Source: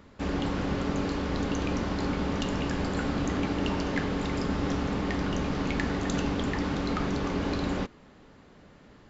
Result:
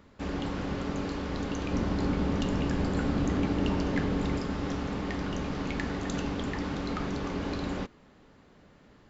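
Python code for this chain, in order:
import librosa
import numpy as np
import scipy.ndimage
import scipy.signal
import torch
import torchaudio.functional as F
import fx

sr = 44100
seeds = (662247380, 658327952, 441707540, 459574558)

y = fx.low_shelf(x, sr, hz=500.0, db=6.0, at=(1.73, 4.38))
y = y * 10.0 ** (-3.5 / 20.0)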